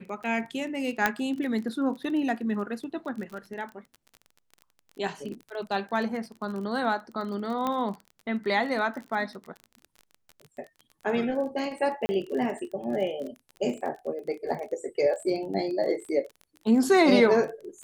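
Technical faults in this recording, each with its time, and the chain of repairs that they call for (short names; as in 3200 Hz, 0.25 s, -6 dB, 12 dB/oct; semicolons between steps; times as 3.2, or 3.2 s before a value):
crackle 29/s -35 dBFS
1.06 pop -8 dBFS
7.67 pop -16 dBFS
12.06–12.09 gap 30 ms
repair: de-click; interpolate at 12.06, 30 ms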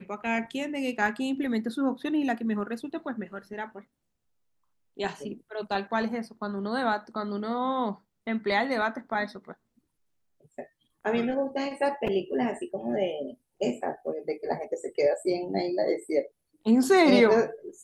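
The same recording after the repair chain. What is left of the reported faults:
1.06 pop
7.67 pop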